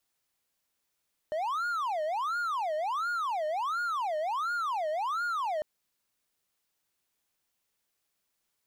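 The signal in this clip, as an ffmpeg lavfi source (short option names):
-f lavfi -i "aevalsrc='0.0473*(1-4*abs(mod((1019.5*t-410.5/(2*PI*1.4)*sin(2*PI*1.4*t))+0.25,1)-0.5))':d=4.3:s=44100"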